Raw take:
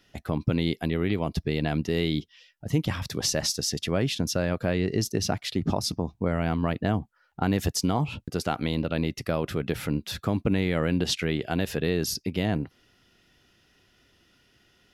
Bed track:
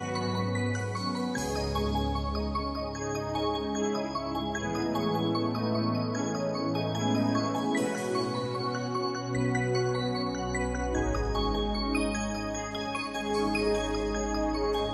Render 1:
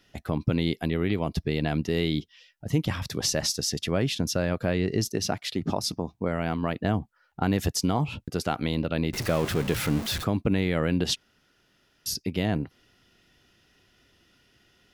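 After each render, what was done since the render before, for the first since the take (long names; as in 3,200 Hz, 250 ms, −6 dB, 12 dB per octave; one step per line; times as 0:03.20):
0:05.08–0:06.85: low-shelf EQ 110 Hz −9.5 dB
0:09.13–0:10.24: converter with a step at zero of −28.5 dBFS
0:11.16–0:12.06: fill with room tone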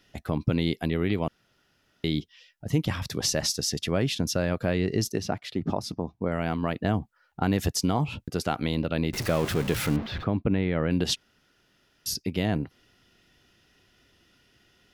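0:01.28–0:02.04: fill with room tone
0:05.20–0:06.32: high-shelf EQ 2,900 Hz −10.5 dB
0:09.96–0:10.91: high-frequency loss of the air 310 metres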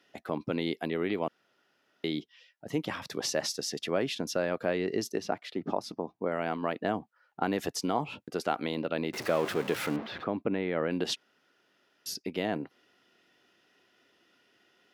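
high-pass filter 320 Hz 12 dB per octave
high-shelf EQ 3,300 Hz −9 dB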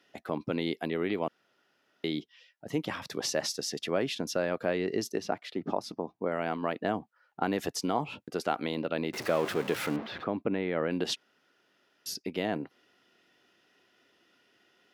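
no processing that can be heard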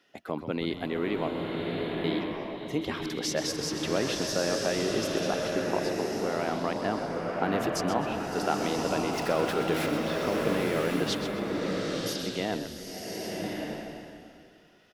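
echo with shifted repeats 129 ms, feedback 32%, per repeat −69 Hz, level −10 dB
slow-attack reverb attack 1,140 ms, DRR −0.5 dB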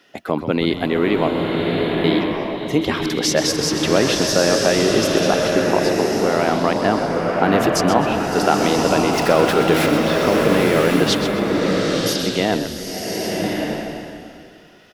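level +12 dB
brickwall limiter −2 dBFS, peak gain reduction 2 dB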